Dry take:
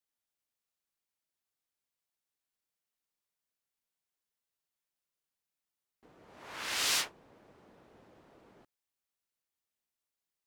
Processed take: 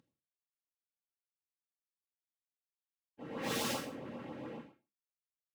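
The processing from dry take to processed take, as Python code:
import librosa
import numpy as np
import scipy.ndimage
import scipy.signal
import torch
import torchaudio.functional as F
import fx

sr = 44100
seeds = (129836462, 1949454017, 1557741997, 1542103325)

y = fx.cvsd(x, sr, bps=16000)
y = (np.mod(10.0 ** (39.5 / 20.0) * y + 1.0, 2.0) - 1.0) / 10.0 ** (39.5 / 20.0)
y = fx.tilt_eq(y, sr, slope=-3.0)
y = fx.echo_feedback(y, sr, ms=76, feedback_pct=40, wet_db=-5.0)
y = np.maximum(y, 0.0)
y = scipy.signal.sosfilt(scipy.signal.butter(4, 110.0, 'highpass', fs=sr, output='sos'), y)
y = y + 0.4 * np.pad(y, (int(3.7 * sr / 1000.0), 0))[:len(y)]
y = fx.rev_gated(y, sr, seeds[0], gate_ms=310, shape='falling', drr_db=0.0)
y = fx.stretch_vocoder_free(y, sr, factor=0.53)
y = fx.filter_lfo_notch(y, sr, shape='saw_up', hz=7.4, low_hz=590.0, high_hz=2100.0, q=1.8)
y = F.gain(torch.from_numpy(y), 15.0).numpy()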